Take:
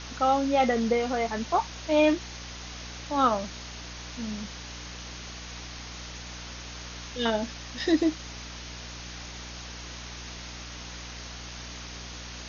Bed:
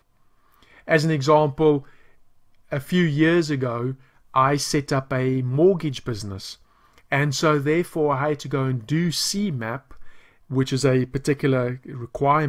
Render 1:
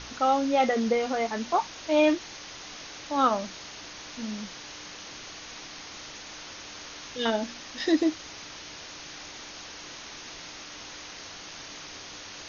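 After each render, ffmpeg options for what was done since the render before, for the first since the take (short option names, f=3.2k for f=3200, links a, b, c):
-af "bandreject=f=60:t=h:w=4,bandreject=f=120:t=h:w=4,bandreject=f=180:t=h:w=4,bandreject=f=240:t=h:w=4"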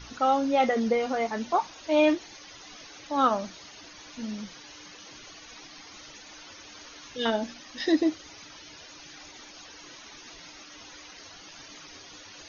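-af "afftdn=nr=12:nf=-43"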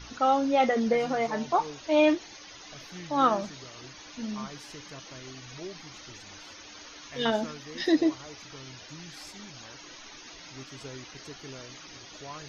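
-filter_complex "[1:a]volume=-24.5dB[a];[0:a][a]amix=inputs=2:normalize=0"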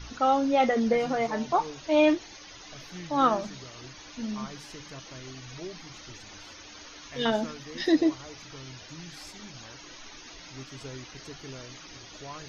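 -af "lowshelf=f=110:g=8,bandreject=f=50:t=h:w=6,bandreject=f=100:t=h:w=6,bandreject=f=150:t=h:w=6,bandreject=f=200:t=h:w=6"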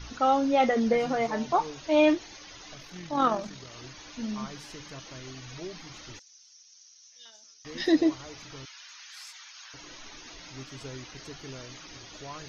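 -filter_complex "[0:a]asettb=1/sr,asplit=3[a][b][c];[a]atrim=end=2.754[d];[b]atrim=start=2.75:end=3.71,asetpts=PTS-STARTPTS,afade=t=in:d=0.004:c=qsin,afade=t=out:st=0.956:d=0.004:c=qsin,tremolo=f=42:d=0.4[e];[c]atrim=start=3.706[f];[d][e]acrossfade=d=0.004:c1=hsin:c2=qsin[g];[g][f]acrossfade=d=0.004:c1=qsin:c2=hsin,asettb=1/sr,asplit=3[h][i][j];[h]atrim=end=6.194[k];[i]atrim=start=6.19:end=7.65,asetpts=PTS-STARTPTS,afade=t=in:d=0.004:c=qsin,afade=t=out:st=1.456:d=0.004:c=qsin,bandpass=f=5.8k:t=q:w=6.5[l];[j]atrim=start=7.646[m];[k][l]acrossfade=d=0.004:c1=hsin:c2=qsin[n];[n][m]acrossfade=d=0.004:c1=qsin:c2=hsin,asettb=1/sr,asplit=3[o][p][q];[o]atrim=end=8.654[r];[p]atrim=start=8.65:end=9.74,asetpts=PTS-STARTPTS,afade=t=in:d=0.004:c=qsin,afade=t=out:st=1.086:d=0.004:c=qsin,highpass=f=1.1k:w=0.5412,highpass=f=1.1k:w=1.3066[s];[q]atrim=start=9.736[t];[r][s]acrossfade=d=0.004:c1=hsin:c2=qsin[u];[u][t]acrossfade=d=0.004:c1=qsin:c2=hsin"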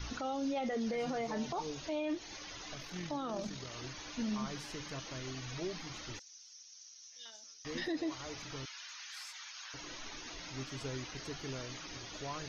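-filter_complex "[0:a]acrossover=split=630|2600[a][b][c];[a]acompressor=threshold=-32dB:ratio=4[d];[b]acompressor=threshold=-40dB:ratio=4[e];[c]acompressor=threshold=-46dB:ratio=4[f];[d][e][f]amix=inputs=3:normalize=0,alimiter=level_in=5dB:limit=-24dB:level=0:latency=1:release=28,volume=-5dB"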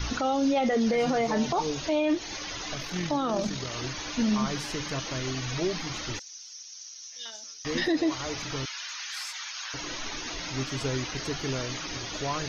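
-af "volume=11dB"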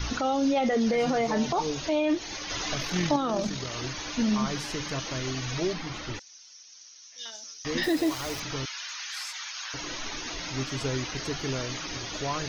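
-filter_complex "[0:a]asettb=1/sr,asplit=3[a][b][c];[a]atrim=end=5.734[d];[b]atrim=start=5.73:end=7.18,asetpts=PTS-STARTPTS,afade=t=in:d=0.004:c=qsin,afade=t=out:st=1.446:d=0.004:c=qsin,aemphasis=mode=reproduction:type=50kf[e];[c]atrim=start=7.176[f];[d][e]acrossfade=d=0.004:c1=hsin:c2=qsin[g];[g][f]acrossfade=d=0.004:c1=qsin:c2=hsin,asettb=1/sr,asplit=3[h][i][j];[h]atrim=end=7.834[k];[i]atrim=start=7.83:end=8.4,asetpts=PTS-STARTPTS,afade=t=in:d=0.004:c=qsin,afade=t=out:st=0.566:d=0.004:c=qsin,acrusher=bits=7:dc=4:mix=0:aa=0.000001[l];[j]atrim=start=8.396[m];[k][l]acrossfade=d=0.004:c1=hsin:c2=qsin[n];[n][m]acrossfade=d=0.004:c1=qsin:c2=hsin,asplit=3[o][p][q];[o]atrim=end=2.502[r];[p]atrim=start=2.498:end=3.162,asetpts=PTS-STARTPTS,volume=4dB[s];[q]atrim=start=3.158[t];[r][s]acrossfade=d=0.004:c1=hsin:c2=hsin[u];[u][t]acrossfade=d=0.004:c1=hsin:c2=hsin"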